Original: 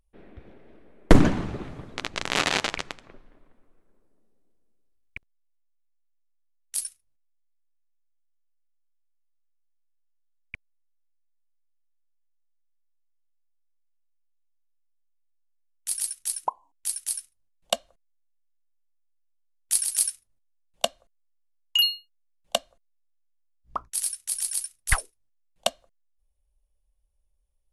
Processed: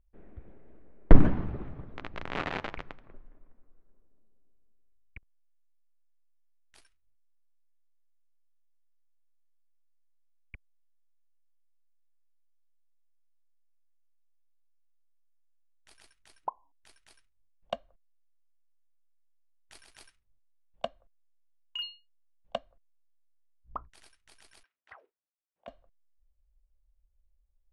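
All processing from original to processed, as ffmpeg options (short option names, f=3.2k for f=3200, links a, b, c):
-filter_complex "[0:a]asettb=1/sr,asplit=3[a][b][c];[a]atrim=end=24.634[d];[b]atrim=start=24.63:end=25.68,asetpts=PTS-STARTPTS,afade=t=in:d=0.004:c=qsin,afade=t=out:st=1.046:d=0.004:c=qsin,highpass=410,lowpass=2.5k,acompressor=threshold=-38dB:ratio=8:attack=3.2:release=140:knee=1:detection=peak[e];[c]atrim=start=25.676[f];[d][e]acrossfade=d=0.004:c1=hsin:c2=qsin[g];[g][f]acrossfade=d=0.004:c1=qsin:c2=hsin,lowpass=1.9k,lowshelf=f=100:g=10.5,volume=-7dB"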